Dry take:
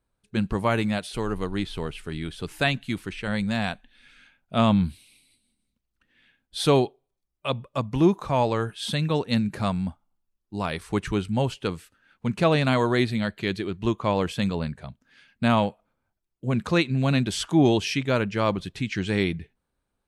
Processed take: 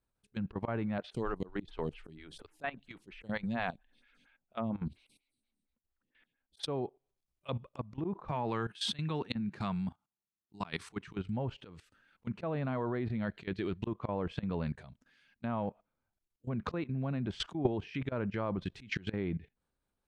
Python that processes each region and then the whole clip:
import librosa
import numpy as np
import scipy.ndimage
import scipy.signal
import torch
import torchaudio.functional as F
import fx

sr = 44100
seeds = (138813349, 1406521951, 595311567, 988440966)

y = fx.chain(x, sr, fx.high_shelf(hz=6500.0, db=-9.5),
    fx.stagger_phaser(hz=4.3), at=(0.98, 6.63))
y = fx.chain(y, sr, fx.highpass(hz=130.0, slope=12),
    fx.peak_eq(hz=550.0, db=-9.0, octaves=0.61),
    fx.notch(hz=270.0, q=8.7), at=(8.31, 11.19))
y = fx.env_lowpass_down(y, sr, base_hz=1400.0, full_db=-20.0)
y = fx.auto_swell(y, sr, attack_ms=123.0)
y = fx.level_steps(y, sr, step_db=17)